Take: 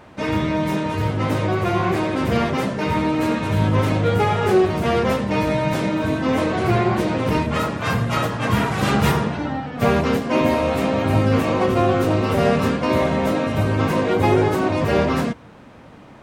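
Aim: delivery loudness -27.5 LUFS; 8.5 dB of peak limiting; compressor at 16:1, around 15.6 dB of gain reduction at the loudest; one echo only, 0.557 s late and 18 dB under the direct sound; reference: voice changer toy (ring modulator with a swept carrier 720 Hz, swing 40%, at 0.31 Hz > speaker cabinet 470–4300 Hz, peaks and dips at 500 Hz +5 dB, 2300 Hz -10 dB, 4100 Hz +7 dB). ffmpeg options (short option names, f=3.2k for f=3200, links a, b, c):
-af "acompressor=threshold=-28dB:ratio=16,alimiter=level_in=3dB:limit=-24dB:level=0:latency=1,volume=-3dB,aecho=1:1:557:0.126,aeval=exprs='val(0)*sin(2*PI*720*n/s+720*0.4/0.31*sin(2*PI*0.31*n/s))':c=same,highpass=470,equalizer=f=500:t=q:w=4:g=5,equalizer=f=2.3k:t=q:w=4:g=-10,equalizer=f=4.1k:t=q:w=4:g=7,lowpass=f=4.3k:w=0.5412,lowpass=f=4.3k:w=1.3066,volume=12dB"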